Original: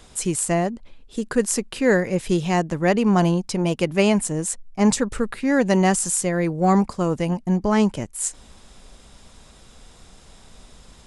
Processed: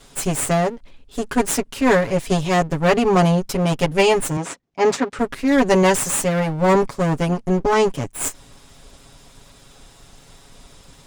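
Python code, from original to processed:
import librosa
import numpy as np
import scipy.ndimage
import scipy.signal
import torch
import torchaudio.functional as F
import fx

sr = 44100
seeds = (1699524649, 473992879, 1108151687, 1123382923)

y = fx.lower_of_two(x, sr, delay_ms=7.2)
y = fx.bandpass_edges(y, sr, low_hz=190.0, high_hz=5400.0, at=(4.37, 5.19))
y = y * librosa.db_to_amplitude(3.0)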